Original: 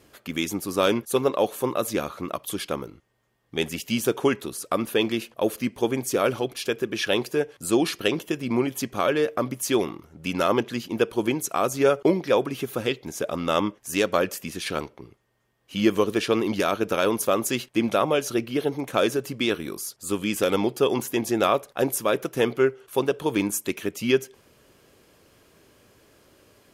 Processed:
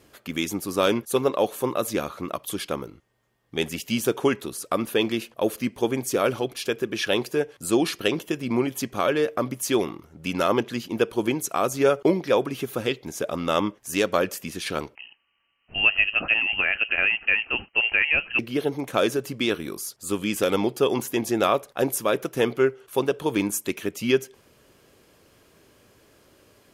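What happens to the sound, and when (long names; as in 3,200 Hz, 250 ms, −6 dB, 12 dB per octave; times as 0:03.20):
0:14.95–0:18.39: voice inversion scrambler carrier 3,000 Hz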